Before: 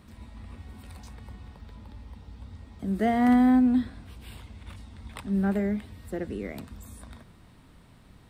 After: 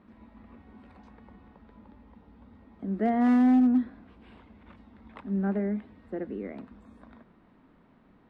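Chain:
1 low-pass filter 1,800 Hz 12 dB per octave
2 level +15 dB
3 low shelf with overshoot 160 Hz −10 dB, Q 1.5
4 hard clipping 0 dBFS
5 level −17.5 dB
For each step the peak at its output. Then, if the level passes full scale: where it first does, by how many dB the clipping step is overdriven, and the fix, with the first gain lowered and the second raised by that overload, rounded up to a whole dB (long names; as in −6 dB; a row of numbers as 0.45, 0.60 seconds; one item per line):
−13.5, +1.5, +4.5, 0.0, −17.5 dBFS
step 2, 4.5 dB
step 2 +10 dB, step 5 −12.5 dB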